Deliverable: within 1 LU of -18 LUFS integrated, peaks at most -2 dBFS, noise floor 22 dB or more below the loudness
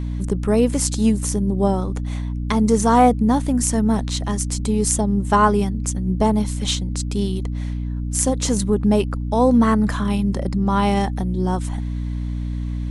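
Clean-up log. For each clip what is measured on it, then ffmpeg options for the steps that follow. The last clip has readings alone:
hum 60 Hz; harmonics up to 300 Hz; hum level -22 dBFS; loudness -20.0 LUFS; peak -1.5 dBFS; loudness target -18.0 LUFS
-> -af "bandreject=f=60:t=h:w=4,bandreject=f=120:t=h:w=4,bandreject=f=180:t=h:w=4,bandreject=f=240:t=h:w=4,bandreject=f=300:t=h:w=4"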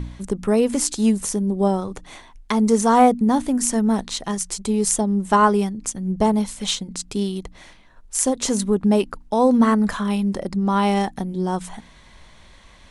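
hum none; loudness -20.5 LUFS; peak -1.5 dBFS; loudness target -18.0 LUFS
-> -af "volume=2.5dB,alimiter=limit=-2dB:level=0:latency=1"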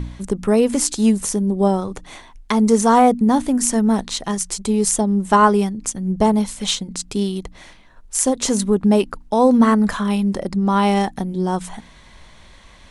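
loudness -18.0 LUFS; peak -2.0 dBFS; noise floor -46 dBFS

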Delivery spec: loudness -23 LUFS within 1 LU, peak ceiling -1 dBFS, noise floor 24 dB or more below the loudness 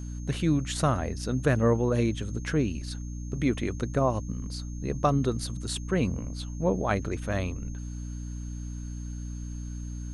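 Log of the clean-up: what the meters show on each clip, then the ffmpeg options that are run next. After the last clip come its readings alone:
hum 60 Hz; harmonics up to 300 Hz; hum level -33 dBFS; steady tone 6400 Hz; tone level -51 dBFS; loudness -29.5 LUFS; peak -10.5 dBFS; loudness target -23.0 LUFS
-> -af "bandreject=f=60:t=h:w=4,bandreject=f=120:t=h:w=4,bandreject=f=180:t=h:w=4,bandreject=f=240:t=h:w=4,bandreject=f=300:t=h:w=4"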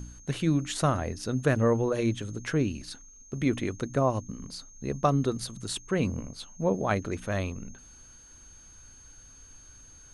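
hum none; steady tone 6400 Hz; tone level -51 dBFS
-> -af "bandreject=f=6.4k:w=30"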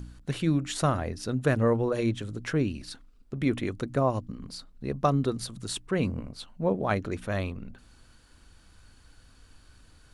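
steady tone none; loudness -29.0 LUFS; peak -11.0 dBFS; loudness target -23.0 LUFS
-> -af "volume=6dB"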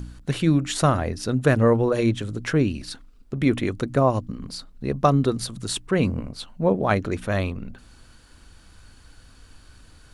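loudness -23.0 LUFS; peak -5.0 dBFS; noise floor -51 dBFS

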